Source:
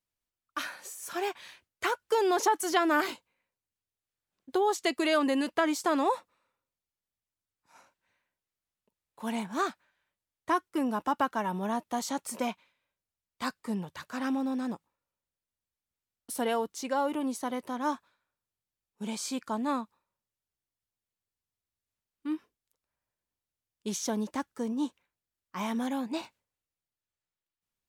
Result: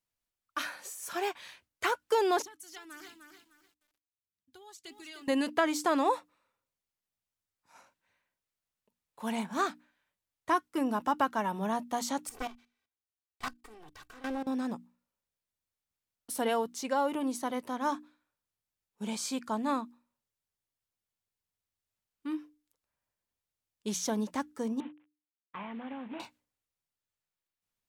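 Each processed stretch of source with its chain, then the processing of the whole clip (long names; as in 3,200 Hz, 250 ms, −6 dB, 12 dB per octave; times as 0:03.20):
0:02.42–0:05.28: guitar amp tone stack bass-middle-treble 6-0-2 + phase shifter 1.6 Hz, delay 1.6 ms, feedback 41% + feedback echo at a low word length 302 ms, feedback 35%, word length 11 bits, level −6 dB
0:12.29–0:14.47: lower of the sound and its delayed copy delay 2.6 ms + output level in coarse steps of 17 dB
0:24.80–0:26.20: variable-slope delta modulation 16 kbit/s + Bessel high-pass filter 160 Hz + downward compressor 10 to 1, threshold −36 dBFS
whole clip: parametric band 360 Hz −2.5 dB 0.27 octaves; mains-hum notches 60/120/180/240/300 Hz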